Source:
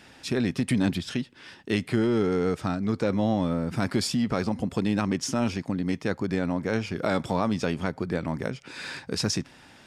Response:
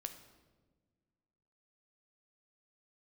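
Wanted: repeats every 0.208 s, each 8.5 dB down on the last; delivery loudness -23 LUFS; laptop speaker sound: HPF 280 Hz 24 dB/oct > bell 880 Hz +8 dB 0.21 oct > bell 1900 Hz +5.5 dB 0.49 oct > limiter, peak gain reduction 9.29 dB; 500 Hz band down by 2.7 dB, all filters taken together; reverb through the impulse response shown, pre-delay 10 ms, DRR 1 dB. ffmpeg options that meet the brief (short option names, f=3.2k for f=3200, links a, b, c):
-filter_complex "[0:a]equalizer=f=500:t=o:g=-3.5,aecho=1:1:208|416|624|832:0.376|0.143|0.0543|0.0206,asplit=2[a][b];[1:a]atrim=start_sample=2205,adelay=10[c];[b][c]afir=irnorm=-1:irlink=0,volume=2dB[d];[a][d]amix=inputs=2:normalize=0,highpass=f=280:w=0.5412,highpass=f=280:w=1.3066,equalizer=f=880:t=o:w=0.21:g=8,equalizer=f=1.9k:t=o:w=0.49:g=5.5,volume=6.5dB,alimiter=limit=-11dB:level=0:latency=1"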